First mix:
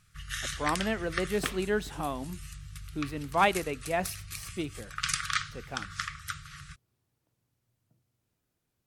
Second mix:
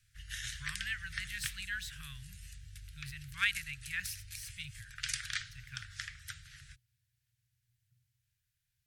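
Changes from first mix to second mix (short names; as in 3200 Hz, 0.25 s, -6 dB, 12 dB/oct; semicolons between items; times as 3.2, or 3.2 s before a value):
first sound -5.5 dB; master: add Chebyshev band-stop 130–1600 Hz, order 4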